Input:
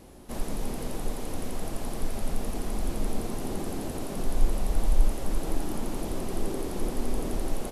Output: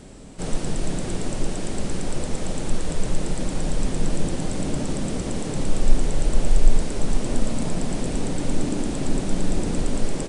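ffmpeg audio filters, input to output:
-af "asetrate=33075,aresample=44100,volume=7dB"

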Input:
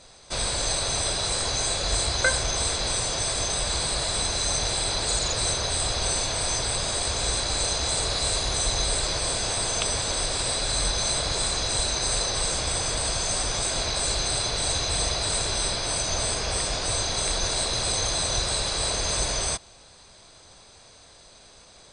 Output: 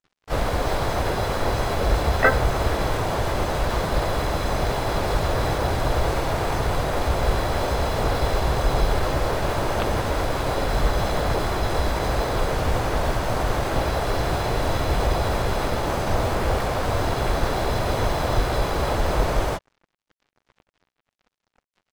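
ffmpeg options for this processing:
-filter_complex "[0:a]lowpass=1.5k,acrusher=bits=6:mix=0:aa=0.5,asplit=4[a][b][c][d];[b]asetrate=22050,aresample=44100,atempo=2,volume=-10dB[e];[c]asetrate=37084,aresample=44100,atempo=1.18921,volume=-4dB[f];[d]asetrate=55563,aresample=44100,atempo=0.793701,volume=-5dB[g];[a][e][f][g]amix=inputs=4:normalize=0,volume=6dB"

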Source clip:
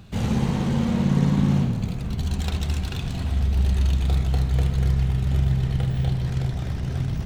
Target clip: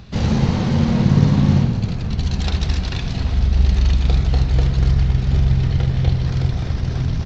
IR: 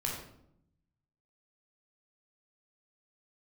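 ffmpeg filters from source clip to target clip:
-filter_complex "[0:a]asplit=2[a][b];[b]asetrate=29433,aresample=44100,atempo=1.49831,volume=-4dB[c];[a][c]amix=inputs=2:normalize=0,aexciter=amount=1.7:drive=1.7:freq=4.1k,aresample=16000,aresample=44100,volume=4dB"

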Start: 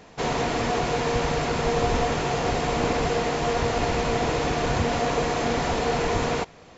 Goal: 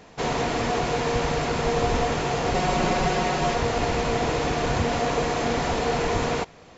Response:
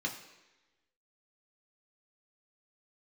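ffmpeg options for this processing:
-filter_complex "[0:a]asettb=1/sr,asplit=3[a][b][c];[a]atrim=end=2.544[d];[b]atrim=start=2.54:end=3.55,asetpts=PTS-STARTPTS,afade=t=in:d=0.004:c=qsin,afade=t=out:st=1.006:d=0.004:c=qsin,aecho=1:1:5.4:0.77,atrim=end_sample=44541[e];[c]atrim=start=3.546[f];[d][e]acrossfade=d=0.004:c1=hsin:c2=qsin[g];[g][f]acrossfade=d=0.004:c1=qsin:c2=hsin"

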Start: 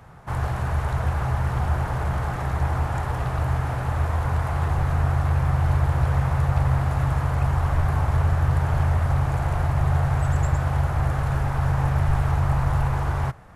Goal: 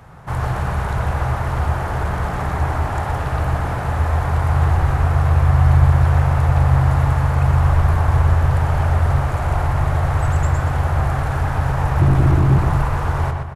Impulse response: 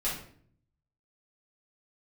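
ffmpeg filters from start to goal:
-filter_complex "[0:a]asettb=1/sr,asplit=3[a][b][c];[a]atrim=end=12.004[d];[b]atrim=start=12:end=12.58,asetpts=PTS-STARTPTS,afade=t=in:d=0.004:c=qsin,afade=t=out:st=0.576:d=0.004:c=qsin,equalizer=f=120:t=o:w=0.88:g=13[e];[c]atrim=start=12.576[f];[d][e]acrossfade=d=0.004:c1=hsin:c2=qsin[g];[g][f]acrossfade=d=0.004:c1=qsin:c2=hsin,asoftclip=type=hard:threshold=-11.5dB,asplit=2[h][i];[i]adelay=122,lowpass=f=3.9k:p=1,volume=-4dB,asplit=2[j][k];[k]adelay=122,lowpass=f=3.9k:p=1,volume=0.46,asplit=2[l][m];[m]adelay=122,lowpass=f=3.9k:p=1,volume=0.46,asplit=2[n][o];[o]adelay=122,lowpass=f=3.9k:p=1,volume=0.46,asplit=2[p][q];[q]adelay=122,lowpass=f=3.9k:p=1,volume=0.46,asplit=2[r][s];[s]adelay=122,lowpass=f=3.9k:p=1,volume=0.46[t];[h][j][l][n][p][r][t]amix=inputs=7:normalize=0,volume=4dB"

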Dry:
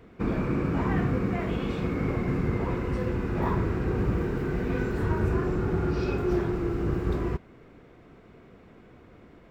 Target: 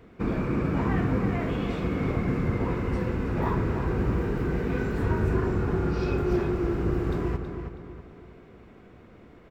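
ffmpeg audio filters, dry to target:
-filter_complex "[0:a]asplit=2[a][b];[b]adelay=323,lowpass=f=4k:p=1,volume=-7dB,asplit=2[c][d];[d]adelay=323,lowpass=f=4k:p=1,volume=0.42,asplit=2[e][f];[f]adelay=323,lowpass=f=4k:p=1,volume=0.42,asplit=2[g][h];[h]adelay=323,lowpass=f=4k:p=1,volume=0.42,asplit=2[i][j];[j]adelay=323,lowpass=f=4k:p=1,volume=0.42[k];[a][c][e][g][i][k]amix=inputs=6:normalize=0"

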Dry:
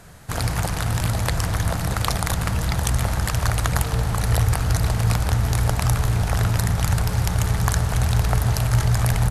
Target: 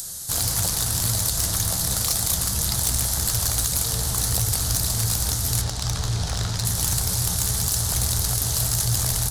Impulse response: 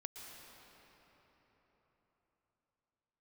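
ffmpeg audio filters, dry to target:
-filter_complex "[0:a]asettb=1/sr,asplit=3[a][b][c];[a]atrim=end=5.614[d];[b]atrim=start=5.61:end=6.65,asetpts=PTS-STARTPTS,afade=t=in:d=0.004:c=qsin,afade=t=out:st=1.036:d=0.004:c=qsin,lowpass=4.7k[e];[c]atrim=start=6.646[f];[d][e]acrossfade=d=0.004:c1=hsin:c2=qsin[g];[g][f]acrossfade=d=0.004:c1=qsin:c2=hsin,acrossover=split=3300[h][i];[h]alimiter=limit=-11.5dB:level=0:latency=1:release=128[j];[i]acompressor=mode=upward:threshold=-42dB:ratio=2.5[k];[j][k]amix=inputs=2:normalize=0,aexciter=amount=5.5:drive=7.9:freq=3.6k,asoftclip=type=tanh:threshold=-11dB,flanger=delay=8:depth=8.5:regen=67:speed=1.8:shape=triangular"

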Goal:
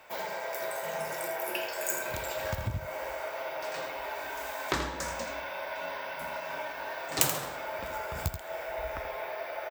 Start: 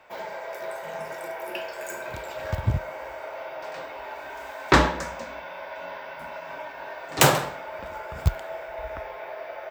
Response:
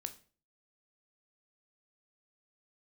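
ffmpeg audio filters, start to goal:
-filter_complex "[0:a]acompressor=threshold=-29dB:ratio=6,crystalizer=i=2:c=0,asplit=2[a][b];[b]aecho=0:1:82:0.355[c];[a][c]amix=inputs=2:normalize=0,volume=-1dB"

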